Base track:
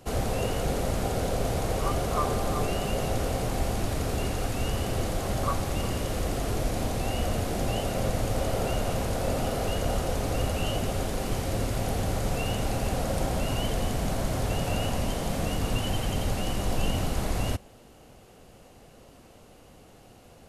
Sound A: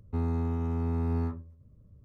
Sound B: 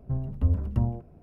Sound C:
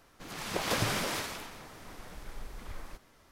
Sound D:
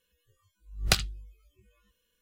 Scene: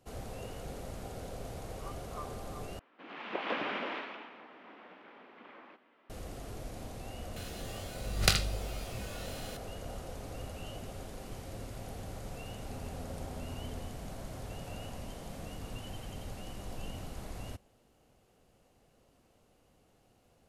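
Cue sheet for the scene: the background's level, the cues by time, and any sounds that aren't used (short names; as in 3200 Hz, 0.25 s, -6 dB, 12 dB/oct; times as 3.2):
base track -15 dB
2.79 replace with C -2 dB + elliptic band-pass 240–2900 Hz, stop band 60 dB
7.36 add D -3.5 dB + per-bin compression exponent 0.4
12.56 add A -17 dB
not used: B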